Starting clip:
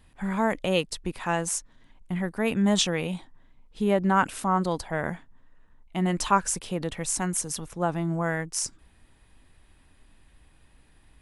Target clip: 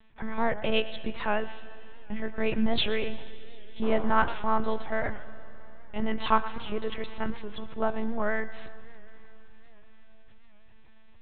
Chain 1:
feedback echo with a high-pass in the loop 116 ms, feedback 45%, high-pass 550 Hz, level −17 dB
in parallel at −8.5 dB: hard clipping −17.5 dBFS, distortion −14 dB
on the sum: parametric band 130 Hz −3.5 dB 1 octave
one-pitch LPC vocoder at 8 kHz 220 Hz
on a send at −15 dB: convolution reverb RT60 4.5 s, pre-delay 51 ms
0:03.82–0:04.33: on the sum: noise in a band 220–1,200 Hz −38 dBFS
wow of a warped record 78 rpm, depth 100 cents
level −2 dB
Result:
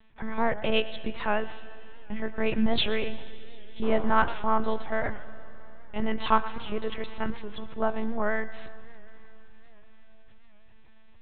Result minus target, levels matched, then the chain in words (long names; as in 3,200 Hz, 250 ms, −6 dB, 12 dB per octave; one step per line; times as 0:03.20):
hard clipping: distortion −8 dB
feedback echo with a high-pass in the loop 116 ms, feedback 45%, high-pass 550 Hz, level −17 dB
in parallel at −8.5 dB: hard clipping −25.5 dBFS, distortion −6 dB
on the sum: parametric band 130 Hz −3.5 dB 1 octave
one-pitch LPC vocoder at 8 kHz 220 Hz
on a send at −15 dB: convolution reverb RT60 4.5 s, pre-delay 51 ms
0:03.82–0:04.33: on the sum: noise in a band 220–1,200 Hz −38 dBFS
wow of a warped record 78 rpm, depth 100 cents
level −2 dB